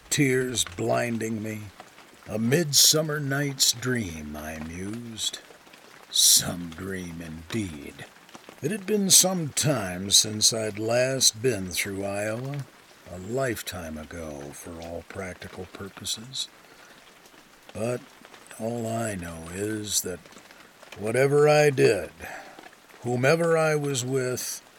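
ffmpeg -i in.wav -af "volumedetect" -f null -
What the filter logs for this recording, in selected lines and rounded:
mean_volume: -26.8 dB
max_volume: -1.6 dB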